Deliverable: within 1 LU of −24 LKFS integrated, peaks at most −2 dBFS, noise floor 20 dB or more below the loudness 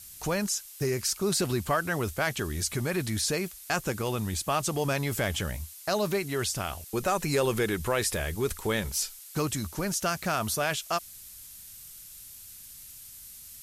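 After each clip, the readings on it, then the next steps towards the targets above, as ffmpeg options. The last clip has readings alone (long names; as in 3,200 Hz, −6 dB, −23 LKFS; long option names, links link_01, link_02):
background noise floor −47 dBFS; target noise floor −50 dBFS; integrated loudness −29.5 LKFS; sample peak −14.0 dBFS; target loudness −24.0 LKFS
→ -af "afftdn=noise_reduction=6:noise_floor=-47"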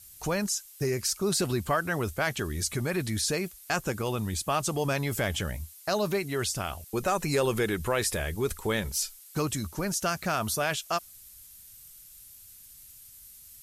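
background noise floor −51 dBFS; integrated loudness −29.5 LKFS; sample peak −14.0 dBFS; target loudness −24.0 LKFS
→ -af "volume=5.5dB"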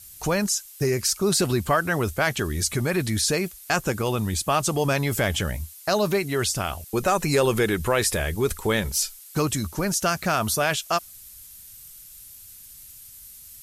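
integrated loudness −24.0 LKFS; sample peak −8.5 dBFS; background noise floor −46 dBFS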